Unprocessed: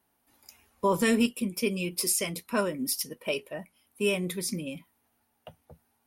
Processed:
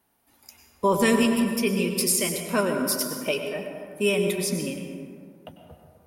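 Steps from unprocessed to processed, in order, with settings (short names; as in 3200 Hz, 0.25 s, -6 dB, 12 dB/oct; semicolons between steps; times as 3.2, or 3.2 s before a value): plate-style reverb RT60 2.2 s, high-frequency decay 0.4×, pre-delay 85 ms, DRR 4 dB; gain +3.5 dB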